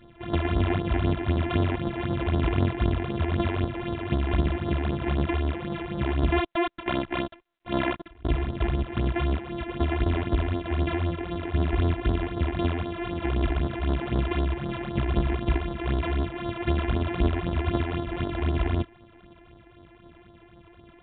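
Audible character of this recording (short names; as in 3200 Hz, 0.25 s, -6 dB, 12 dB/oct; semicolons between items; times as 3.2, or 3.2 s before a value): a buzz of ramps at a fixed pitch in blocks of 128 samples; phasing stages 8, 3.9 Hz, lowest notch 150–2500 Hz; µ-law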